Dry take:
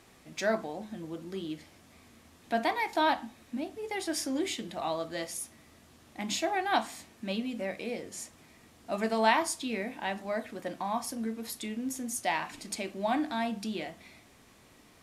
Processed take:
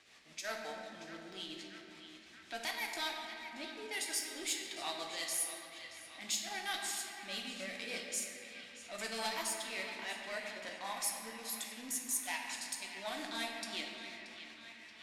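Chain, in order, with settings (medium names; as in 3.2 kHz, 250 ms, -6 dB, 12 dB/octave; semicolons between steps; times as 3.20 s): single-diode clipper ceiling -23.5 dBFS; pre-emphasis filter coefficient 0.97; compression 6:1, threshold -45 dBFS, peak gain reduction 13.5 dB; level-controlled noise filter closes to 2.8 kHz, open at -44.5 dBFS; rotary cabinet horn 5.5 Hz; transient shaper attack -6 dB, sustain -10 dB; band-passed feedback delay 629 ms, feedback 78%, band-pass 2.2 kHz, level -10 dB; reverberation RT60 3.0 s, pre-delay 7 ms, DRR 1 dB; trim +14.5 dB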